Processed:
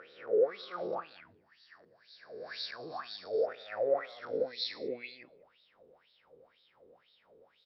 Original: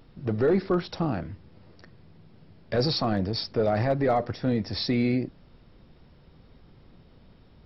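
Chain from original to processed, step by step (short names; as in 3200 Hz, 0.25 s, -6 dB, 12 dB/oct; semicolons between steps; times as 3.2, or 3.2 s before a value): spectral swells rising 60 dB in 1.45 s; limiter -20 dBFS, peak gain reduction 10.5 dB; high shelf 3100 Hz +7.5 dB; wah 2 Hz 420–3900 Hz, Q 7.8; bell 520 Hz +10 dB 0.59 oct, from 1.04 s -7.5 dB, from 3.23 s +7 dB; speakerphone echo 0.2 s, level -29 dB; AGC gain up to 3 dB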